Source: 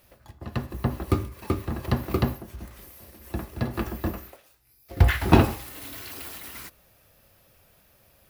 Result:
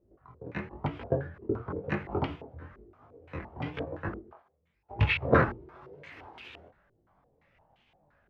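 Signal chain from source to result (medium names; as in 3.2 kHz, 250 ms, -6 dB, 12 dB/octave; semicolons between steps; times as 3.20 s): sawtooth pitch modulation +7.5 st, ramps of 677 ms; chorus 1 Hz, delay 20 ms, depth 5.2 ms; step-sequenced low-pass 5.8 Hz 370–2800 Hz; trim -4 dB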